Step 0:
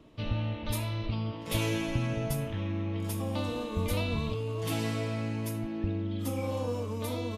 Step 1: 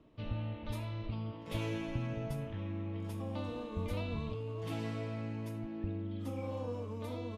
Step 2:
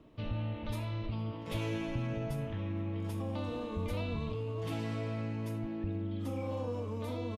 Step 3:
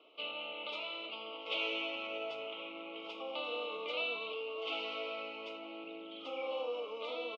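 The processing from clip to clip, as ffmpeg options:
-af "lowpass=f=2.4k:p=1,volume=-6.5dB"
-filter_complex "[0:a]asplit=2[a][b];[b]alimiter=level_in=11dB:limit=-24dB:level=0:latency=1,volume=-11dB,volume=1.5dB[c];[a][c]amix=inputs=2:normalize=0,asplit=2[d][e];[e]adelay=460.6,volume=-22dB,highshelf=f=4k:g=-10.4[f];[d][f]amix=inputs=2:normalize=0,volume=-2.5dB"
-af "asuperstop=centerf=1700:order=8:qfactor=2.2,highpass=f=490:w=0.5412,highpass=f=490:w=1.3066,equalizer=f=610:t=q:w=4:g=-4,equalizer=f=980:t=q:w=4:g=-9,equalizer=f=1.5k:t=q:w=4:g=6,equalizer=f=2.9k:t=q:w=4:g=10,lowpass=f=4k:w=0.5412,lowpass=f=4k:w=1.3066,volume=5dB"

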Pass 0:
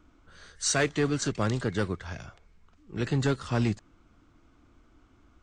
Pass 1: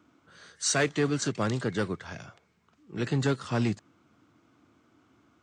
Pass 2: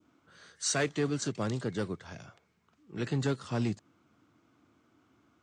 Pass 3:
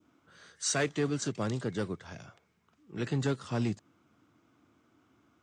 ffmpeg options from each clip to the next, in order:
-af "highpass=f=110:w=0.5412,highpass=f=110:w=1.3066"
-af "adynamicequalizer=threshold=0.00501:dfrequency=1700:dqfactor=0.79:tfrequency=1700:tqfactor=0.79:attack=5:release=100:ratio=0.375:range=2.5:mode=cutabove:tftype=bell,volume=-3.5dB"
-af "bandreject=f=4.3k:w=23"

